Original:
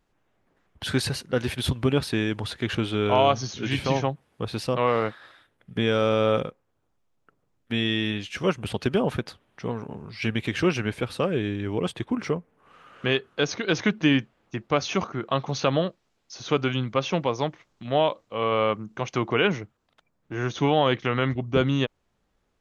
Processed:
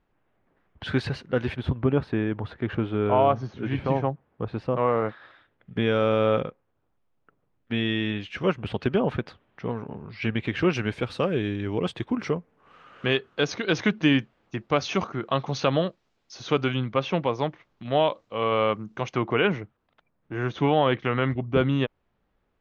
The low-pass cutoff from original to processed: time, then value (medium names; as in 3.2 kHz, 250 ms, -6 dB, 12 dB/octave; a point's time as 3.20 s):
2.7 kHz
from 1.56 s 1.5 kHz
from 5.09 s 3 kHz
from 10.73 s 5.6 kHz
from 16.72 s 3.5 kHz
from 17.86 s 5.7 kHz
from 19.13 s 2.9 kHz